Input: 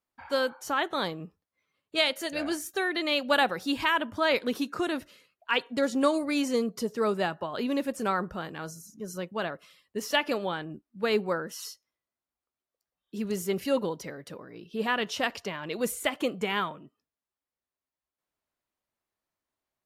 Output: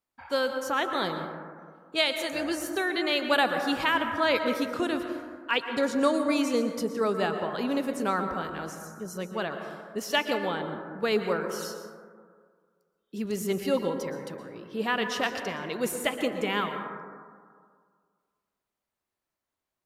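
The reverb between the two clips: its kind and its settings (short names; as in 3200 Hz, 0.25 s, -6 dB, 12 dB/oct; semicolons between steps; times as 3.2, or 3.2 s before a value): plate-style reverb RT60 1.9 s, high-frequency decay 0.25×, pre-delay 0.105 s, DRR 6 dB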